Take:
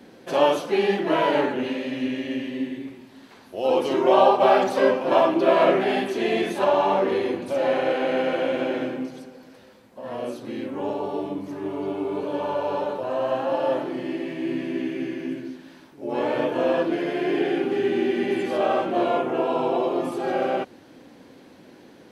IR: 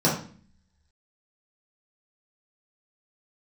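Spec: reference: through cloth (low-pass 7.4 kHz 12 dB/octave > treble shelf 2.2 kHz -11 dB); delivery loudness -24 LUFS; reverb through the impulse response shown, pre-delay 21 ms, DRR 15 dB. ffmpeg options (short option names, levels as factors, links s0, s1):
-filter_complex "[0:a]asplit=2[s0][s1];[1:a]atrim=start_sample=2205,adelay=21[s2];[s1][s2]afir=irnorm=-1:irlink=0,volume=0.0299[s3];[s0][s3]amix=inputs=2:normalize=0,lowpass=7400,highshelf=f=2200:g=-11"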